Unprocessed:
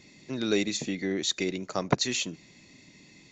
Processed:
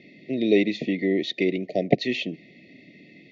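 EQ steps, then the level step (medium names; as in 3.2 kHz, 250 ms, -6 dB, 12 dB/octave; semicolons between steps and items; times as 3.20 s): band-pass 190–3800 Hz; brick-wall FIR band-stop 740–1800 Hz; distance through air 270 m; +8.5 dB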